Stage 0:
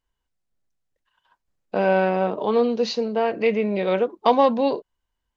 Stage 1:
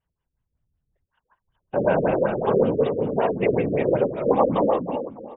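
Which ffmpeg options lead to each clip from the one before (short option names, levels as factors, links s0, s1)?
-af "aecho=1:1:300|600|900|1200:0.473|0.137|0.0398|0.0115,afftfilt=real='hypot(re,im)*cos(2*PI*random(0))':imag='hypot(re,im)*sin(2*PI*random(1))':win_size=512:overlap=0.75,afftfilt=real='re*lt(b*sr/1024,540*pow(3800/540,0.5+0.5*sin(2*PI*5.3*pts/sr)))':imag='im*lt(b*sr/1024,540*pow(3800/540,0.5+0.5*sin(2*PI*5.3*pts/sr)))':win_size=1024:overlap=0.75,volume=1.88"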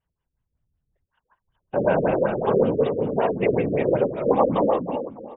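-af anull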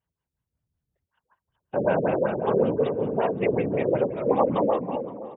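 -filter_complex "[0:a]highpass=66,asplit=2[s0][s1];[s1]adelay=521,lowpass=f=1800:p=1,volume=0.133,asplit=2[s2][s3];[s3]adelay=521,lowpass=f=1800:p=1,volume=0.41,asplit=2[s4][s5];[s5]adelay=521,lowpass=f=1800:p=1,volume=0.41[s6];[s0][s2][s4][s6]amix=inputs=4:normalize=0,volume=0.75"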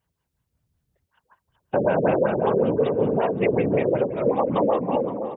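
-af "alimiter=limit=0.112:level=0:latency=1:release=376,volume=2.51"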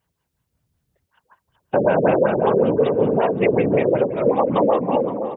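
-af "lowshelf=f=100:g=-5,volume=1.58"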